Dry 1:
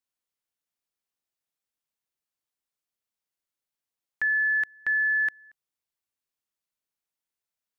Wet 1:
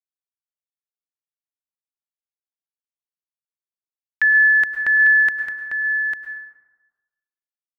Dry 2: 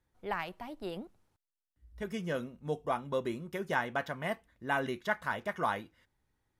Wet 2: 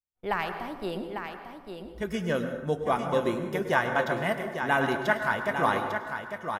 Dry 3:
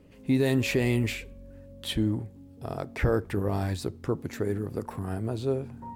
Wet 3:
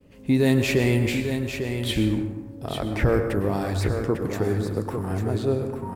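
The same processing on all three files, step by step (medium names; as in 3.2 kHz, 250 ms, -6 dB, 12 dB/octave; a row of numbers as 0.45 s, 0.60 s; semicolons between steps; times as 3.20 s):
expander -52 dBFS; delay 849 ms -7.5 dB; plate-style reverb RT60 1.2 s, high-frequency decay 0.45×, pre-delay 90 ms, DRR 7 dB; peak normalisation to -9 dBFS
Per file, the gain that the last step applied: +9.5 dB, +6.0 dB, +3.5 dB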